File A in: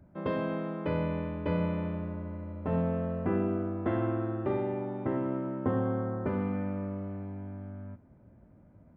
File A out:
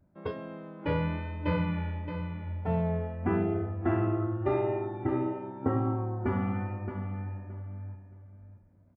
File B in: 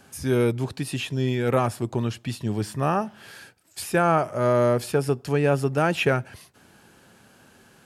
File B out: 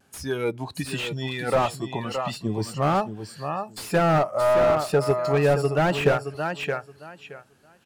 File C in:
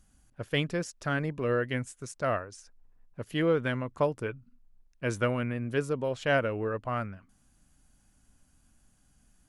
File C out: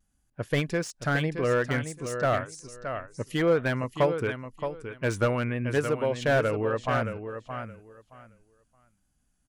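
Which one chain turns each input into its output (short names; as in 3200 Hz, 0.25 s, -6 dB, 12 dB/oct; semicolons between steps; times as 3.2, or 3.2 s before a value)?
spectral noise reduction 14 dB; dynamic EQ 210 Hz, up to -5 dB, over -34 dBFS, Q 0.77; vibrato 0.91 Hz 34 cents; on a send: feedback echo 0.621 s, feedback 19%, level -9 dB; on the sum: slew limiter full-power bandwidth 63 Hz; gain +5 dB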